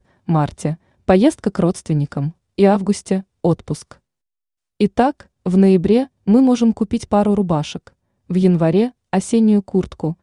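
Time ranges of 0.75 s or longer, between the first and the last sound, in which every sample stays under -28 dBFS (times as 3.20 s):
3.92–4.81 s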